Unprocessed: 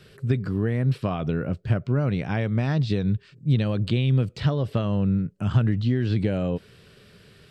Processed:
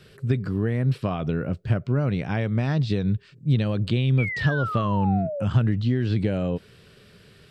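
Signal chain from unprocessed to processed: painted sound fall, 4.18–5.45, 520–2400 Hz -30 dBFS

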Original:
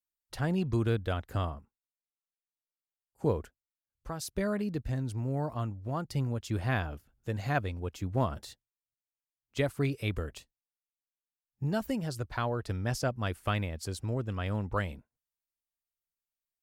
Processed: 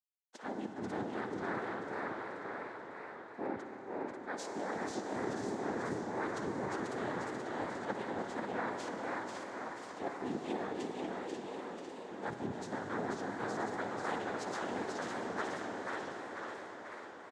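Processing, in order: gate with hold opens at -55 dBFS; Chebyshev high-pass 230 Hz, order 8; resonant high shelf 1600 Hz -6 dB, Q 3; reverse; compressor 6:1, threshold -40 dBFS, peak gain reduction 15.5 dB; reverse; harmoniser -3 st -5 dB, +5 st -17 dB; noise vocoder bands 6; frequency-shifting echo 0.469 s, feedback 53%, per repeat +65 Hz, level -4 dB; on a send at -4 dB: reverb RT60 5.5 s, pre-delay 44 ms; on the sum: speed mistake 25 fps video run at 24 fps; warbling echo 0.545 s, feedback 42%, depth 177 cents, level -5 dB; gain +1.5 dB

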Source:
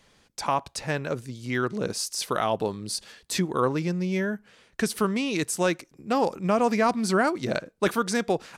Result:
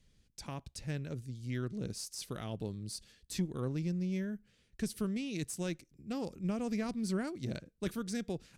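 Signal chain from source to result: passive tone stack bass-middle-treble 10-0-1; added harmonics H 4 -25 dB, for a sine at -31.5 dBFS; gain +8.5 dB

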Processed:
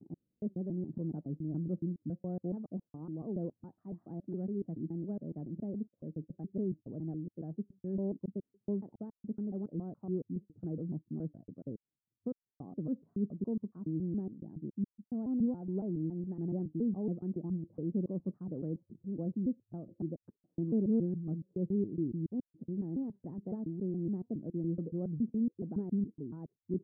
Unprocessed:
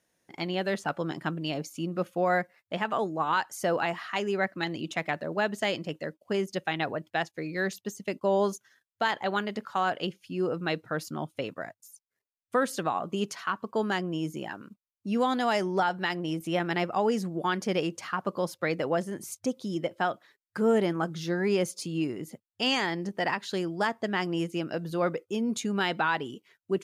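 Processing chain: slices in reverse order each 0.14 s, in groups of 3; ladder low-pass 350 Hz, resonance 20%; record warp 78 rpm, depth 100 cents; gain +3 dB

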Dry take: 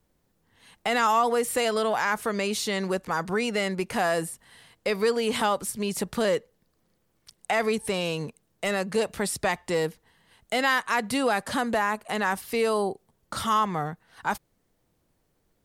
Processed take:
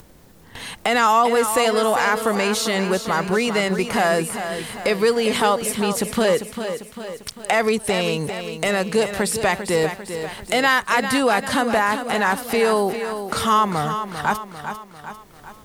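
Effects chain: gate with hold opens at -54 dBFS; upward compressor, threshold -26 dBFS; lo-fi delay 0.397 s, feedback 55%, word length 9-bit, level -9 dB; gain +6 dB

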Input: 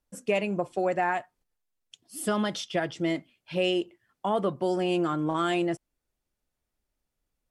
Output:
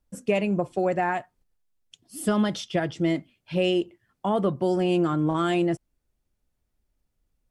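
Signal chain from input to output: low shelf 270 Hz +9.5 dB

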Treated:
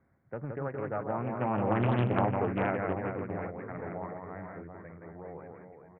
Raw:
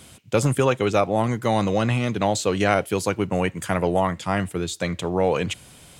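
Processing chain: Doppler pass-by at 1.98, 11 m/s, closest 4.2 m; steep low-pass 2100 Hz 96 dB/oct; on a send: reverse bouncing-ball echo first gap 0.17 s, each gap 1.4×, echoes 5; on the sum: Doppler distortion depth 0.66 ms; gain -5.5 dB

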